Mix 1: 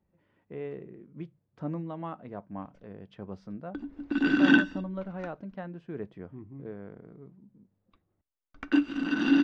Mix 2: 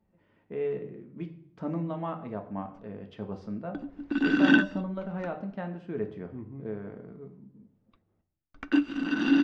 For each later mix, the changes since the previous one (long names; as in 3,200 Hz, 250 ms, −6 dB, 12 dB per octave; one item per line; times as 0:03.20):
speech: send on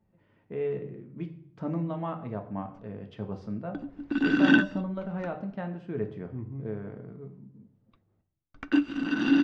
master: add parametric band 120 Hz +9.5 dB 0.45 octaves